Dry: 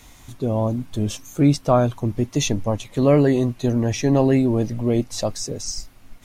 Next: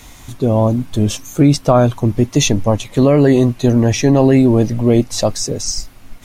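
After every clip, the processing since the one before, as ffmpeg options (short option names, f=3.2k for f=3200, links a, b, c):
-af "alimiter=level_in=9dB:limit=-1dB:release=50:level=0:latency=1,volume=-1dB"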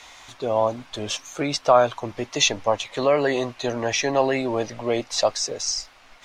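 -filter_complex "[0:a]acrossover=split=530 6400:gain=0.0794 1 0.0891[a][b][c];[a][b][c]amix=inputs=3:normalize=0"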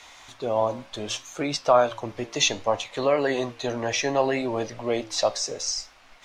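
-af "flanger=delay=9.5:depth=6.9:regen=-78:speed=0.65:shape=triangular,volume=2dB"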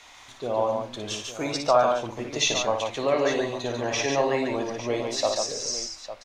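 -af "aecho=1:1:58|143|854:0.473|0.596|0.224,volume=-2.5dB"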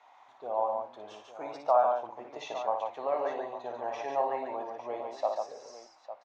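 -af "bandpass=f=810:t=q:w=2.9:csg=0"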